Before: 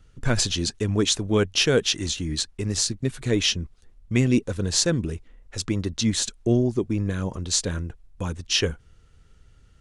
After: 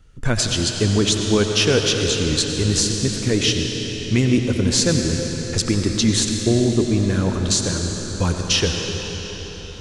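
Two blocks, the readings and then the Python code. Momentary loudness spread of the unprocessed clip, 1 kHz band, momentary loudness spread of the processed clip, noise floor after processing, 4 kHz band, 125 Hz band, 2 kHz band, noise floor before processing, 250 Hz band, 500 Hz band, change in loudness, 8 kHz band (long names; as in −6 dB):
12 LU, +6.0 dB, 7 LU, −33 dBFS, +5.0 dB, +6.0 dB, +4.5 dB, −55 dBFS, +5.5 dB, +5.0 dB, +5.0 dB, +5.0 dB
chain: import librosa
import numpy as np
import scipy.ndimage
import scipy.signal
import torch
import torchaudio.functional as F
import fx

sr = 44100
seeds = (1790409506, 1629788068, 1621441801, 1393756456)

y = fx.recorder_agc(x, sr, target_db=-11.0, rise_db_per_s=10.0, max_gain_db=30)
y = fx.rev_freeverb(y, sr, rt60_s=4.9, hf_ratio=0.9, predelay_ms=50, drr_db=2.5)
y = y * 10.0 ** (2.0 / 20.0)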